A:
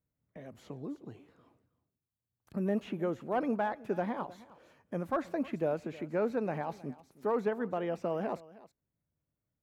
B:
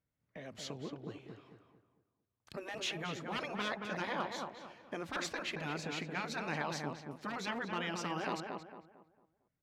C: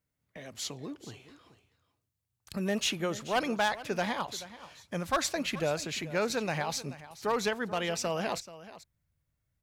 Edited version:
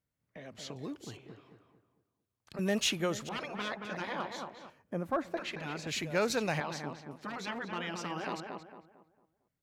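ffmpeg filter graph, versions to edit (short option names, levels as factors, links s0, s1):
-filter_complex "[2:a]asplit=3[s0][s1][s2];[1:a]asplit=5[s3][s4][s5][s6][s7];[s3]atrim=end=0.762[s8];[s0]atrim=start=0.758:end=1.172[s9];[s4]atrim=start=1.168:end=2.592[s10];[s1]atrim=start=2.588:end=3.292[s11];[s5]atrim=start=3.288:end=4.702[s12];[0:a]atrim=start=4.698:end=5.372[s13];[s6]atrim=start=5.368:end=5.872[s14];[s2]atrim=start=5.868:end=6.602[s15];[s7]atrim=start=6.598[s16];[s8][s9]acrossfade=d=0.004:c1=hsin:c2=hsin[s17];[s17][s10]acrossfade=d=0.004:c1=hsin:c2=hsin[s18];[s18][s11]acrossfade=d=0.004:c1=hsin:c2=hsin[s19];[s19][s12]acrossfade=d=0.004:c1=hsin:c2=hsin[s20];[s20][s13]acrossfade=d=0.004:c1=hsin:c2=hsin[s21];[s21][s14]acrossfade=d=0.004:c1=hsin:c2=hsin[s22];[s22][s15]acrossfade=d=0.004:c1=hsin:c2=hsin[s23];[s23][s16]acrossfade=d=0.004:c1=hsin:c2=hsin"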